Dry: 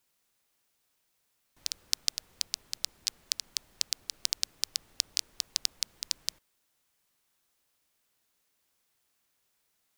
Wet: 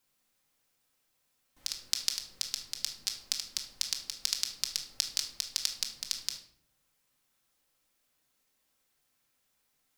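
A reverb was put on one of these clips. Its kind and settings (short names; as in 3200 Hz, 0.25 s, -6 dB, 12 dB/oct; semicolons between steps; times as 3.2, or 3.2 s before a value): shoebox room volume 1000 m³, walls furnished, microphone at 2.1 m; gain -2 dB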